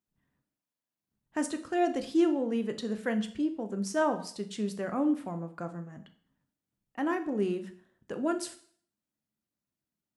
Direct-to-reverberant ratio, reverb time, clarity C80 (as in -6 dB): 7.5 dB, 0.55 s, 17.0 dB